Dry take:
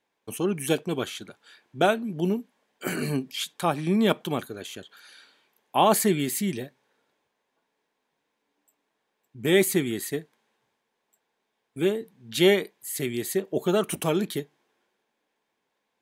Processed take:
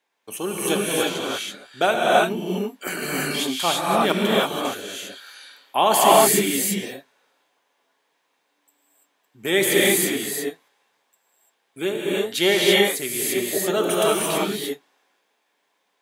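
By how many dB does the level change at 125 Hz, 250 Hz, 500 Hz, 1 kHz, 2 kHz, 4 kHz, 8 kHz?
−1.5, +1.5, +5.0, +8.0, +8.5, +9.5, +9.5 decibels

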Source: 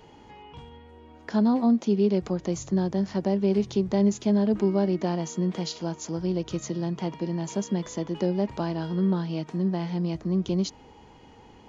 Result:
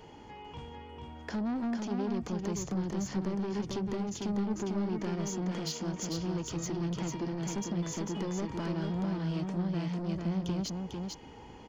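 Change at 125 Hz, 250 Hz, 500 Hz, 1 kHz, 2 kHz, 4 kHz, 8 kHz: −5.5 dB, −8.0 dB, −10.0 dB, −5.5 dB, −2.5 dB, −3.0 dB, can't be measured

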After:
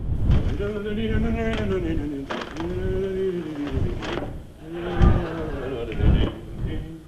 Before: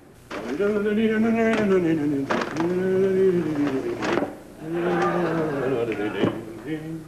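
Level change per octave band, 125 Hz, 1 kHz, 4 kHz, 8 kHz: +7.0 dB, −5.5 dB, +0.5 dB, can't be measured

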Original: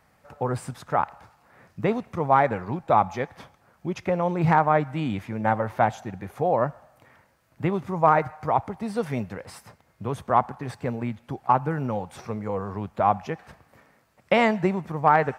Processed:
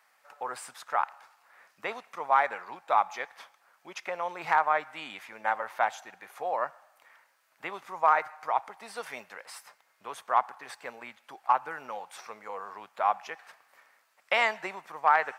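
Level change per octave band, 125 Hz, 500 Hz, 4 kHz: below −30 dB, −10.0 dB, 0.0 dB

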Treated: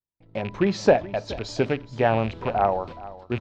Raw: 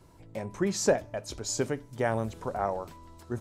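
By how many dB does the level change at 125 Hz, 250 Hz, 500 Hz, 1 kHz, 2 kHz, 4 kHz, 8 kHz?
+6.5, +6.5, +7.0, +9.5, +6.5, +3.5, −10.0 decibels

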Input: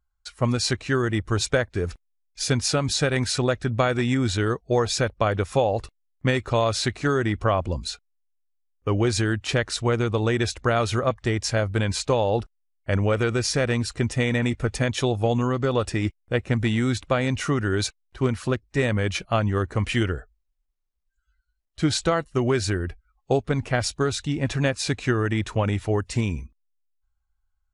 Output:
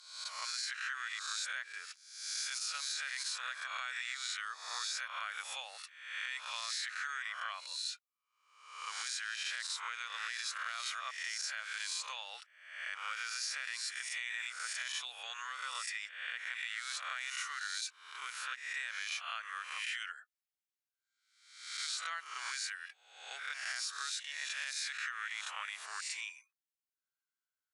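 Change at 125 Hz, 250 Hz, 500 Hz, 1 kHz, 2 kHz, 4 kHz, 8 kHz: below −40 dB, below −40 dB, −40.0 dB, −14.5 dB, −8.0 dB, −8.0 dB, −8.0 dB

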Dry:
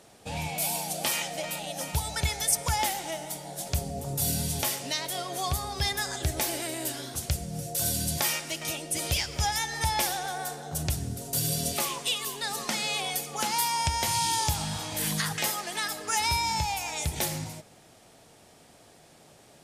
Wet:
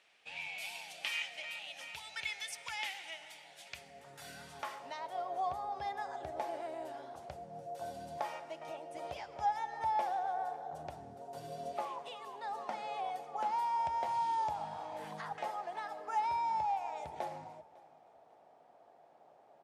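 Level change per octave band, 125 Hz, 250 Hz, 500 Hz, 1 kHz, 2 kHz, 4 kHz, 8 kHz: −24.5, −17.5, −6.0, −3.0, −10.5, −16.5, −26.5 decibels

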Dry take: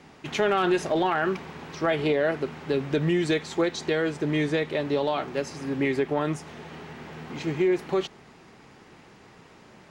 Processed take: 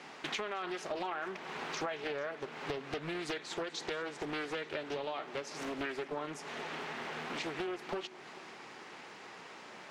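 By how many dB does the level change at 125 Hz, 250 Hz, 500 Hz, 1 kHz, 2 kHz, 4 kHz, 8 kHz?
−19.0, −16.0, −14.0, −9.5, −8.5, −6.5, −6.0 decibels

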